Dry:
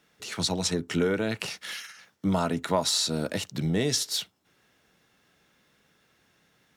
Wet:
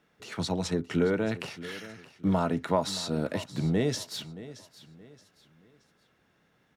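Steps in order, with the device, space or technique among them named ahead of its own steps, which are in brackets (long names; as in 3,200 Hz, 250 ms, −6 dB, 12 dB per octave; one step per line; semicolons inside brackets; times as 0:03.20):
through cloth (high-shelf EQ 3,300 Hz −14 dB)
high-shelf EQ 10,000 Hz +4.5 dB
repeating echo 624 ms, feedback 34%, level −16.5 dB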